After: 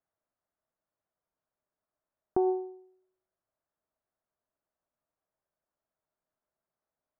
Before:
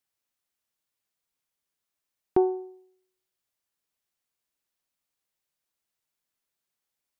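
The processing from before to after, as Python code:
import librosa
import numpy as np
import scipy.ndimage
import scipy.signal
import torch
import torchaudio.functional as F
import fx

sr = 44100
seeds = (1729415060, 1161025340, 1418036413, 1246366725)

p1 = scipy.signal.sosfilt(scipy.signal.butter(4, 1500.0, 'lowpass', fs=sr, output='sos'), x)
p2 = fx.over_compress(p1, sr, threshold_db=-27.0, ratio=-1.0)
p3 = p1 + F.gain(torch.from_numpy(p2), 2.5).numpy()
p4 = fx.peak_eq(p3, sr, hz=630.0, db=10.0, octaves=0.25)
y = F.gain(torch.from_numpy(p4), -8.5).numpy()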